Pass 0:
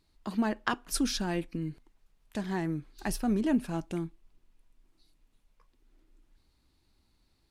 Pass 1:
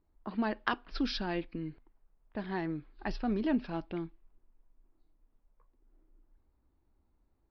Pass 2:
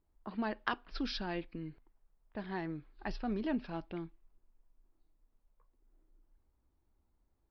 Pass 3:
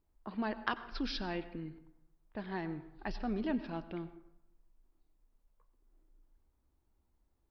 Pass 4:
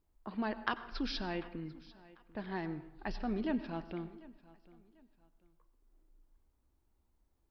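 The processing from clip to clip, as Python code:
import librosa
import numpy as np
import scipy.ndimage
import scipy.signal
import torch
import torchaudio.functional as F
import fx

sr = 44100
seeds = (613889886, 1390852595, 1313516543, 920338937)

y1 = scipy.signal.sosfilt(scipy.signal.butter(12, 5100.0, 'lowpass', fs=sr, output='sos'), x)
y1 = fx.peak_eq(y1, sr, hz=150.0, db=-5.5, octaves=1.3)
y1 = fx.env_lowpass(y1, sr, base_hz=1000.0, full_db=-26.5)
y1 = y1 * librosa.db_to_amplitude(-1.0)
y2 = fx.peak_eq(y1, sr, hz=280.0, db=-2.5, octaves=0.77)
y2 = y2 * librosa.db_to_amplitude(-3.0)
y3 = fx.rev_plate(y2, sr, seeds[0], rt60_s=0.86, hf_ratio=0.5, predelay_ms=80, drr_db=14.0)
y4 = fx.echo_feedback(y3, sr, ms=744, feedback_pct=31, wet_db=-21.0)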